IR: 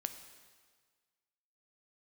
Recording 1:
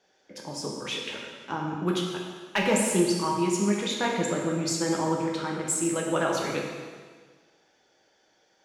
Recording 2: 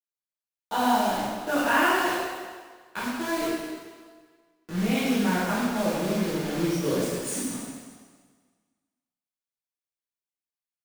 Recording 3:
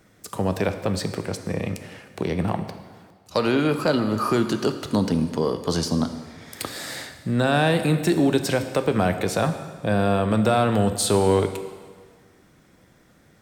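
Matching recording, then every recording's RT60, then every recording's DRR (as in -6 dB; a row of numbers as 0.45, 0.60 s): 3; 1.6, 1.6, 1.6 s; -1.5, -11.0, 8.0 dB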